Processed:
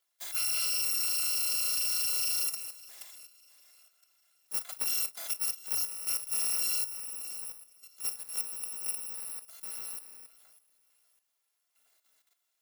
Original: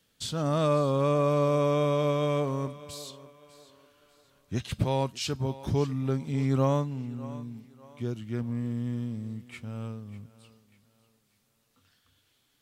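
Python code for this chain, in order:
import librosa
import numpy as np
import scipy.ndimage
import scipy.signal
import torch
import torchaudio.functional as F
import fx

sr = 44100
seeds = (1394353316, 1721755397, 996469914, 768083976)

y = fx.bit_reversed(x, sr, seeds[0], block=256)
y = scipy.signal.sosfilt(scipy.signal.butter(2, 460.0, 'highpass', fs=sr, output='sos'), y)
y = fx.doubler(y, sr, ms=41.0, db=-13)
y = fx.level_steps(y, sr, step_db=10)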